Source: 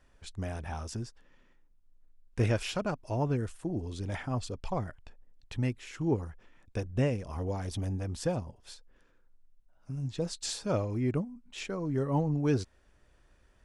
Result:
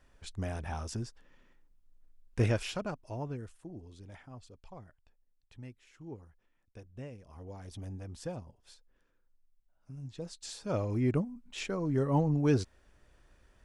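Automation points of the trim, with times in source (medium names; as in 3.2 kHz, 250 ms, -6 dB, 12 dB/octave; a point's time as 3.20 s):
2.42 s 0 dB
3.34 s -9.5 dB
4.37 s -16.5 dB
7.07 s -16.5 dB
7.87 s -8.5 dB
10.50 s -8.5 dB
10.91 s +1 dB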